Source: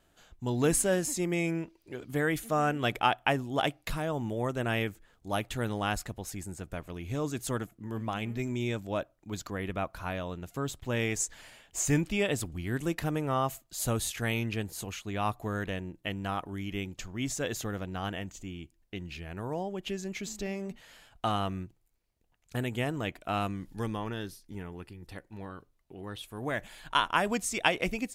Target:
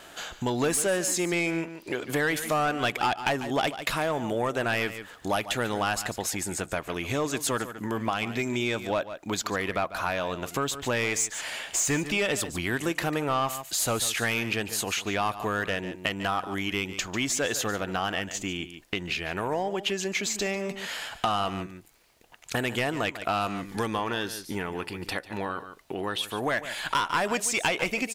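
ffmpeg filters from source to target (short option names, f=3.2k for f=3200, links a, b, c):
-filter_complex "[0:a]asplit=2[a][b];[b]highpass=f=720:p=1,volume=22dB,asoftclip=type=tanh:threshold=-7dB[c];[a][c]amix=inputs=2:normalize=0,lowpass=f=7.1k:p=1,volume=-6dB,aecho=1:1:145:0.178,acompressor=threshold=-40dB:ratio=2.5,volume=8dB"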